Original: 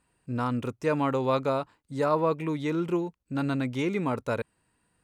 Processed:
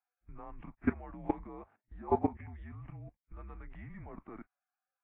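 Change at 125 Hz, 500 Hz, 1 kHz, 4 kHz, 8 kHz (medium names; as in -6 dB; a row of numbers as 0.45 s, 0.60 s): -13.0 dB, -13.0 dB, -10.0 dB, under -30 dB, no reading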